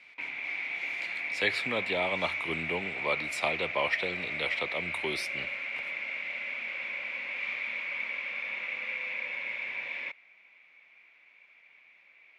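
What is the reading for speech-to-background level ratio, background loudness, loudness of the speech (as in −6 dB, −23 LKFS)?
1.0 dB, −33.5 LKFS, −32.5 LKFS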